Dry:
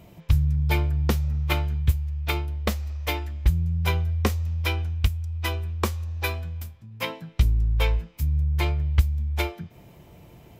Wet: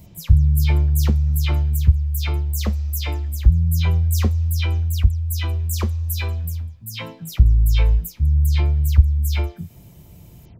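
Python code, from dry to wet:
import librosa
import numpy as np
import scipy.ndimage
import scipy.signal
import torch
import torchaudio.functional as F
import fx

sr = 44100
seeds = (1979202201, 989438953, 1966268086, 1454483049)

y = fx.spec_delay(x, sr, highs='early', ms=141)
y = fx.bass_treble(y, sr, bass_db=11, treble_db=14)
y = F.gain(torch.from_numpy(y), -4.0).numpy()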